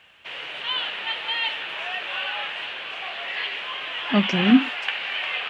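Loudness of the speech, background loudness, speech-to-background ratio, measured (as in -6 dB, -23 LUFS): -20.5 LUFS, -27.0 LUFS, 6.5 dB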